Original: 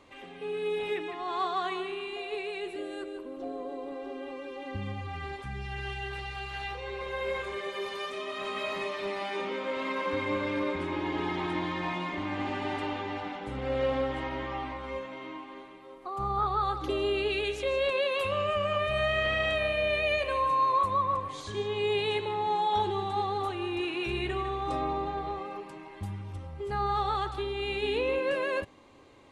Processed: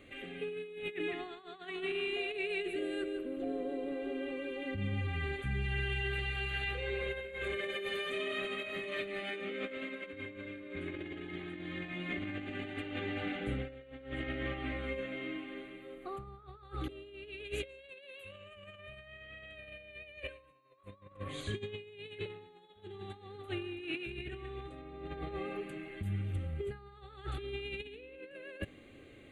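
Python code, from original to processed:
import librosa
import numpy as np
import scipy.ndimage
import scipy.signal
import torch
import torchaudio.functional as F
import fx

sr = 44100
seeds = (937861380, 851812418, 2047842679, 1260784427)

y = fx.high_shelf(x, sr, hz=3600.0, db=7.5, at=(17.69, 18.79))
y = fx.over_compress(y, sr, threshold_db=-36.0, ratio=-0.5)
y = fx.fixed_phaser(y, sr, hz=2300.0, stages=4)
y = F.gain(torch.from_numpy(y), -1.0).numpy()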